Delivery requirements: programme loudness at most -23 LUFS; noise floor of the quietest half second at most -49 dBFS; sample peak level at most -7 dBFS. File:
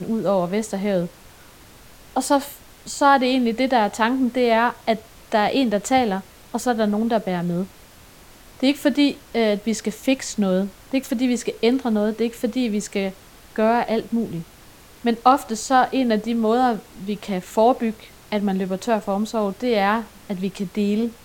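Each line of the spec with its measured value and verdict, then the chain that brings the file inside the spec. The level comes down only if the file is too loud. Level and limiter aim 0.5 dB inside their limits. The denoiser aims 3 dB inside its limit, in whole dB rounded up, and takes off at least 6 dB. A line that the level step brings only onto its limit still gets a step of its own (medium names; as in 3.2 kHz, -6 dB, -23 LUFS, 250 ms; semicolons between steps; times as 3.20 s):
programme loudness -21.5 LUFS: fail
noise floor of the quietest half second -47 dBFS: fail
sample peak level -3.0 dBFS: fail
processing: noise reduction 6 dB, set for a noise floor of -47 dBFS; trim -2 dB; peak limiter -7.5 dBFS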